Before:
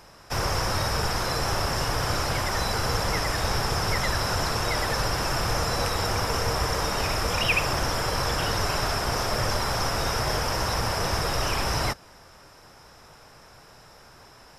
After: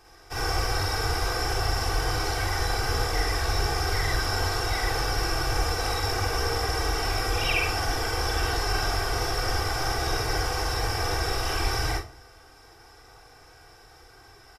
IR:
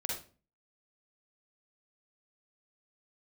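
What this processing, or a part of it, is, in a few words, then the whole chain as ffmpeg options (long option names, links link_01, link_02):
microphone above a desk: -filter_complex "[0:a]aecho=1:1:2.6:0.9[link_01];[1:a]atrim=start_sample=2205[link_02];[link_01][link_02]afir=irnorm=-1:irlink=0,volume=-6.5dB"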